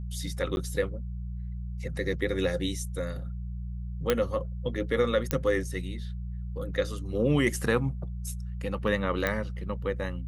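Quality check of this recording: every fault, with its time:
hum 60 Hz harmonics 3 -35 dBFS
0.56–0.57 s: dropout 11 ms
4.10 s: pop -9 dBFS
5.31 s: pop -10 dBFS
9.27 s: pop -13 dBFS

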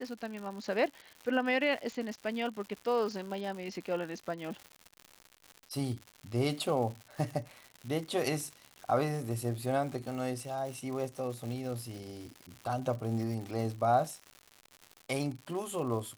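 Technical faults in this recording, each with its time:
crackle 180 per s -39 dBFS

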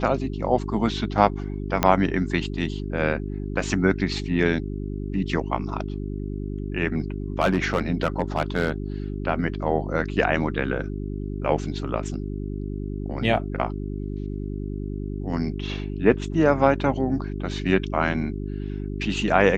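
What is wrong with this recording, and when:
hum 50 Hz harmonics 8 -30 dBFS
1.83 s: pop -4 dBFS
7.40–8.71 s: clipped -14 dBFS

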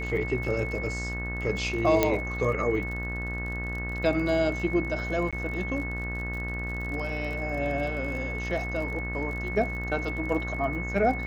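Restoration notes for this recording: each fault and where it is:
buzz 60 Hz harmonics 32 -34 dBFS
crackle 42 per s -36 dBFS
whine 2.2 kHz -34 dBFS
2.03 s: pop -7 dBFS
5.31–5.33 s: dropout 16 ms

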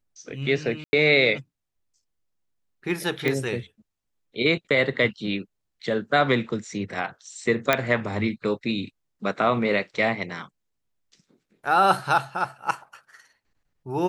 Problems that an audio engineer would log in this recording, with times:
0.84–0.93 s: dropout 90 ms
3.28 s: pop -12 dBFS
7.73 s: pop -5 dBFS

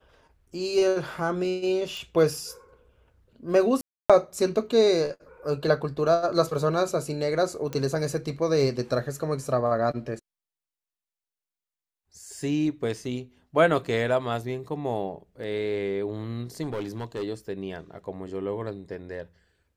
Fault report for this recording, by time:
1.97 s: pop
3.81–4.10 s: dropout 286 ms
7.73 s: pop -18 dBFS
16.62–17.24 s: clipped -26.5 dBFS

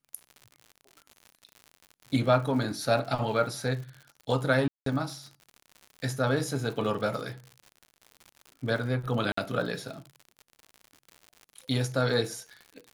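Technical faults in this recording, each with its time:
crackle 96 per s -38 dBFS
4.68–4.86 s: dropout 183 ms
9.32–9.37 s: dropout 54 ms

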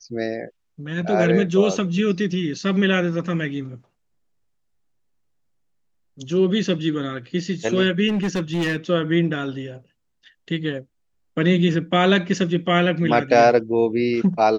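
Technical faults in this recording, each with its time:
8.08–8.77 s: clipped -18 dBFS

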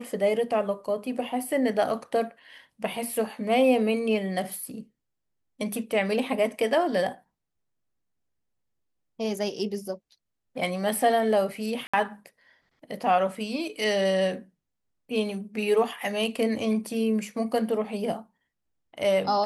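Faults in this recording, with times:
11.87–11.94 s: dropout 65 ms

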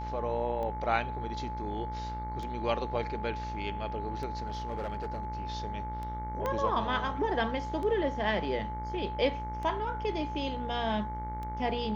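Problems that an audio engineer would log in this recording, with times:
buzz 60 Hz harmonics 38 -39 dBFS
tick 33 1/3 rpm -27 dBFS
whine 860 Hz -37 dBFS
4.47–5.25 s: clipped -30 dBFS
6.46 s: pop -19 dBFS

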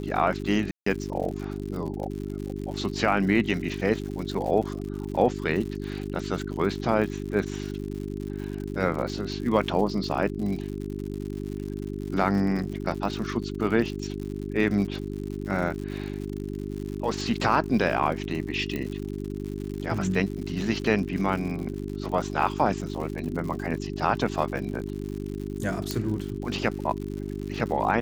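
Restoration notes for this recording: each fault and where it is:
crackle 110 per s -34 dBFS
hum 50 Hz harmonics 8 -33 dBFS
0.71–0.86 s: dropout 154 ms
18.76 s: pop -18 dBFS
25.91 s: pop -12 dBFS

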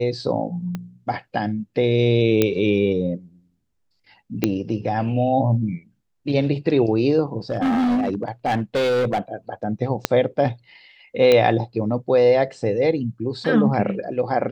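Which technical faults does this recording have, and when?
0.75 s: pop -16 dBFS
2.42 s: pop -4 dBFS
4.44 s: pop -5 dBFS
7.50–9.19 s: clipped -17 dBFS
10.05 s: pop -2 dBFS
11.32 s: pop -5 dBFS

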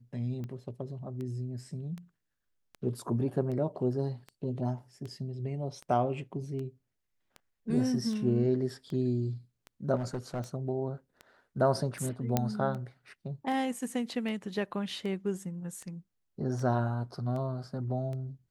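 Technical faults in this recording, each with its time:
tick 78 rpm -29 dBFS
9.95–10.40 s: clipped -29.5 dBFS
12.37 s: pop -12 dBFS

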